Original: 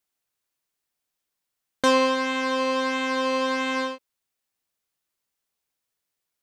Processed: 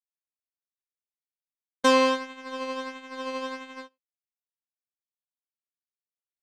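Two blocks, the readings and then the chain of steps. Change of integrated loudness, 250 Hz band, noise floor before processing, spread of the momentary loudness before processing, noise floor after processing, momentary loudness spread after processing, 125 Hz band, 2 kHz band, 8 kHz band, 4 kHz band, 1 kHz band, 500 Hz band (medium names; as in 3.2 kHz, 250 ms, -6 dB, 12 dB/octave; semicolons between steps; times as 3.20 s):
-3.0 dB, -4.0 dB, -83 dBFS, 7 LU, under -85 dBFS, 18 LU, no reading, -6.0 dB, -3.0 dB, -4.0 dB, -3.5 dB, -3.0 dB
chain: gate -22 dBFS, range -42 dB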